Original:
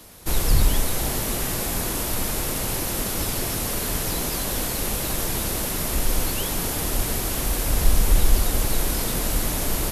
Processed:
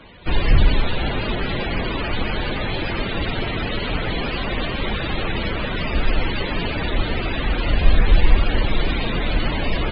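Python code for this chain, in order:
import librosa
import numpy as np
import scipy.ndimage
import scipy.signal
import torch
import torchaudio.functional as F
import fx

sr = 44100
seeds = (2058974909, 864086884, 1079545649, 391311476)

y = np.repeat(x[::6], 6)[:len(x)]
y = fx.spec_topn(y, sr, count=64)
y = F.gain(torch.from_numpy(y), 4.0).numpy()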